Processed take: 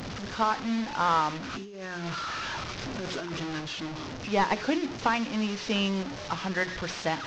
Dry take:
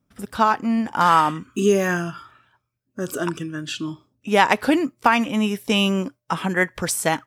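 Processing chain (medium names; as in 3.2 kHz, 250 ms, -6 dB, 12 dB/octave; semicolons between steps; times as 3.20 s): one-bit delta coder 32 kbps, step -22.5 dBFS; hum notches 60/120/180/240/300/360/420 Hz; 1.53–3.61 s: compressor with a negative ratio -27 dBFS, ratio -1; trim -8 dB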